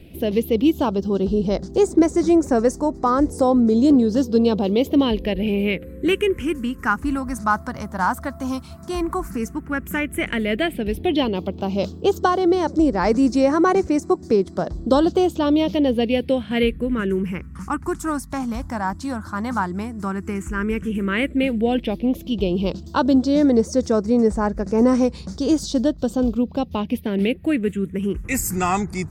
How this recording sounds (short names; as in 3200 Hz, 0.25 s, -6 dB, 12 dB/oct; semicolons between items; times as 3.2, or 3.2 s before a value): phasing stages 4, 0.092 Hz, lowest notch 450–3000 Hz; Nellymoser